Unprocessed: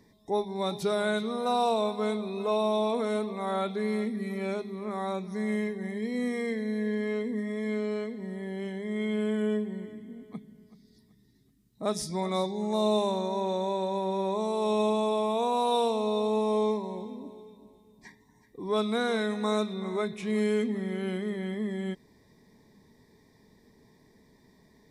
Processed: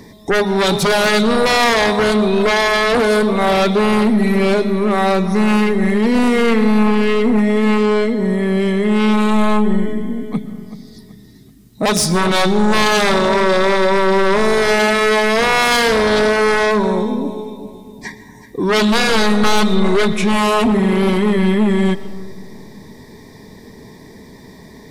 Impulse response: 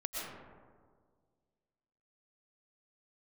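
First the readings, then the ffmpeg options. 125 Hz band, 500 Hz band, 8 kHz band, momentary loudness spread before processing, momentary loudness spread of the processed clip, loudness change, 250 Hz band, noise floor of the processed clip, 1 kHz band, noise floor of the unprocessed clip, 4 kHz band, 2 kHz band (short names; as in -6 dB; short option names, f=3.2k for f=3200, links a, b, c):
+17.0 dB, +13.5 dB, +20.0 dB, 9 LU, 9 LU, +15.0 dB, +15.5 dB, -41 dBFS, +14.5 dB, -62 dBFS, +18.5 dB, +22.5 dB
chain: -filter_complex "[0:a]aeval=exprs='0.168*sin(PI/2*3.98*val(0)/0.168)':c=same,asplit=2[a][b];[1:a]atrim=start_sample=2205[c];[b][c]afir=irnorm=-1:irlink=0,volume=-14.5dB[d];[a][d]amix=inputs=2:normalize=0,volume=4dB"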